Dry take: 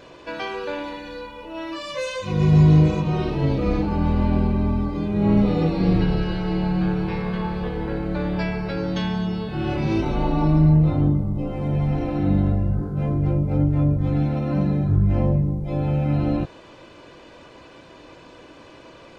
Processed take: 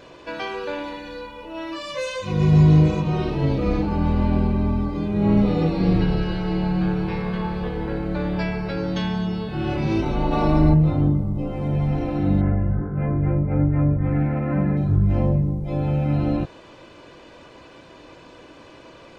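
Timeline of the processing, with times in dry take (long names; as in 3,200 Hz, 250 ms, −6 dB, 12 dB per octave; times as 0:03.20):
0:10.31–0:10.73: ceiling on every frequency bin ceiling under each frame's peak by 13 dB
0:12.41–0:14.77: high shelf with overshoot 2,800 Hz −12.5 dB, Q 3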